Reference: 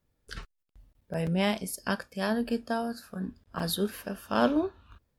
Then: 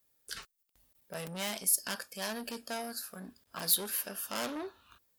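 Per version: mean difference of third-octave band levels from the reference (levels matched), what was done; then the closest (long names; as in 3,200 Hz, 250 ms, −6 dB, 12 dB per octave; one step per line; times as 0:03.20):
8.0 dB: soft clipping −29 dBFS, distortion −8 dB
RIAA equalisation recording
level −2 dB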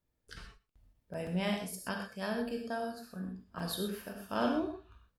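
4.5 dB: on a send: single-tap delay 118 ms −23.5 dB
on the sum: reverb whose tail is shaped and stops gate 150 ms flat, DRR 2 dB
level −8 dB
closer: second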